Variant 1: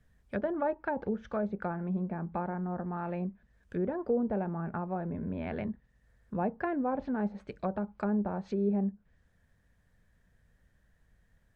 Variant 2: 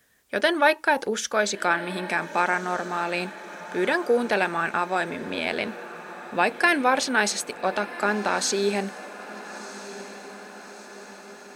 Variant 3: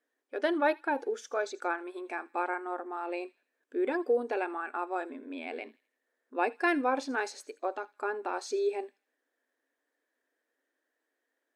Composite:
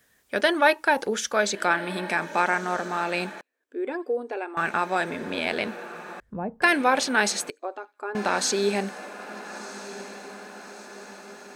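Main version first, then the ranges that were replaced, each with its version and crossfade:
2
3.41–4.57 from 3
6.2–6.62 from 1
7.5–8.15 from 3

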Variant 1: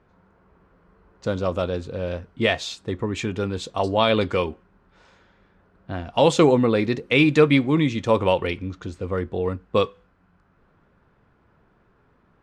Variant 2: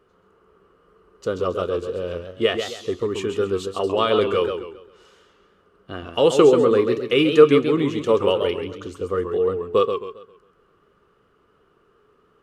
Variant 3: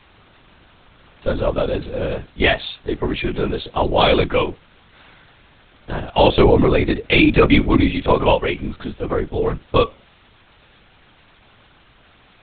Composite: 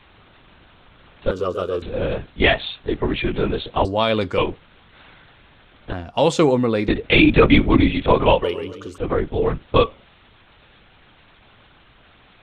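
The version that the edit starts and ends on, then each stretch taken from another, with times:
3
1.31–1.82 from 2
3.85–4.38 from 1
5.93–6.88 from 1
8.44–8.98 from 2

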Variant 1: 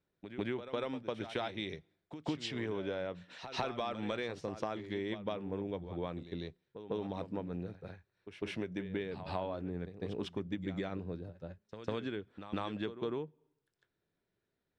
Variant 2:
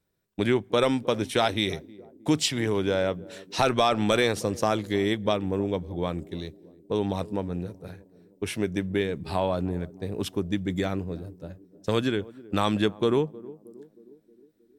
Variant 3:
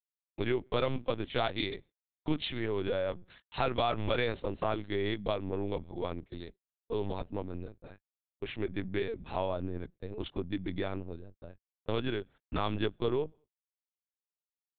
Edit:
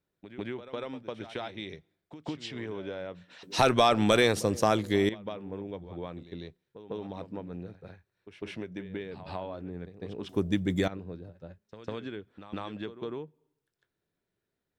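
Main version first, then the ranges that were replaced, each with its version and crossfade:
1
3.43–5.09 from 2
10.29–10.88 from 2
not used: 3

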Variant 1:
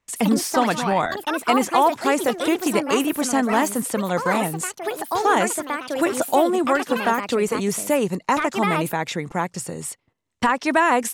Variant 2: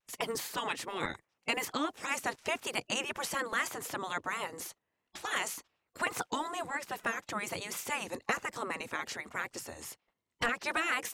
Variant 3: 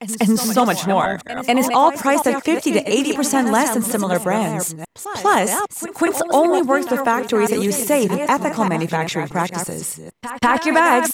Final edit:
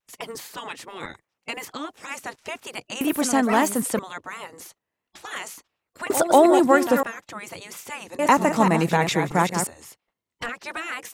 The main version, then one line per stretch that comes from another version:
2
3.01–3.99 from 1
6.1–7.03 from 3
8.19–9.67 from 3

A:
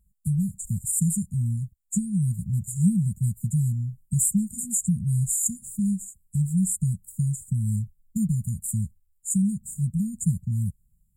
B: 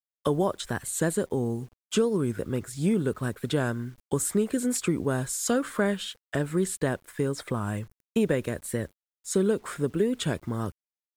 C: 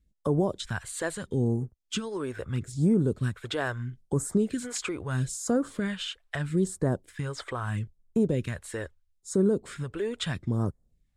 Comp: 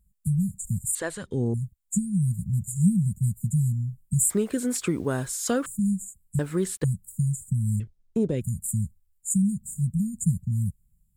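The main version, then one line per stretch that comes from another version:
A
0.95–1.54 from C
4.3–5.66 from B
6.39–6.84 from B
7.8–8.41 from C

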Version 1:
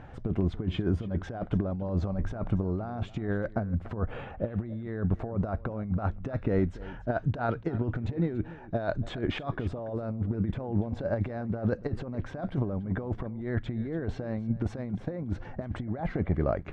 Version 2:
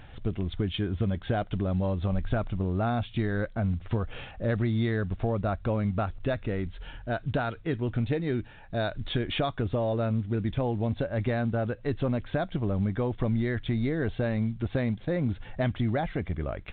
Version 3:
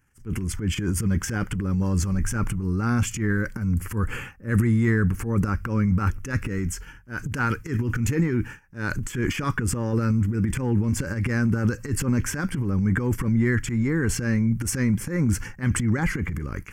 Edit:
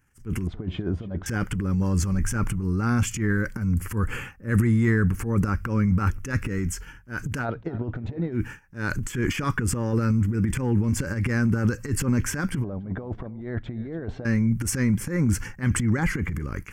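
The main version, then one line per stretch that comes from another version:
3
0.47–1.26 from 1
7.42–8.36 from 1, crossfade 0.10 s
12.64–14.25 from 1
not used: 2

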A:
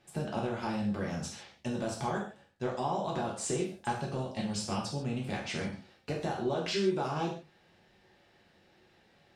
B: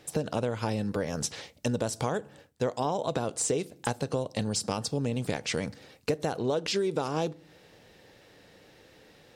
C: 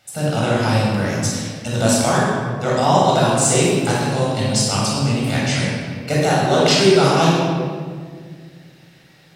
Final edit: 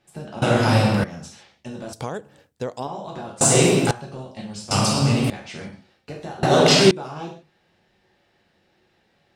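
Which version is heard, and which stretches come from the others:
A
0.42–1.04 from C
1.93–2.87 from B
3.41–3.91 from C
4.71–5.3 from C
6.43–6.91 from C

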